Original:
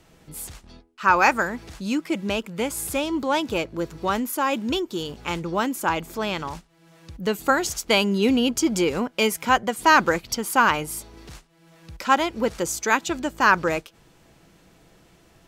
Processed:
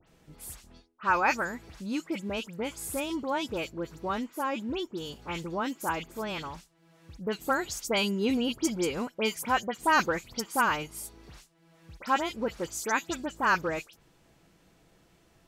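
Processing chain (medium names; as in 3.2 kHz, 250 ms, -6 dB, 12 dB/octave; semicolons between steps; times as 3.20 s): 4.11–4.90 s: treble shelf 5.1 kHz -10.5 dB; phase dispersion highs, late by 77 ms, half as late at 3 kHz; trim -7.5 dB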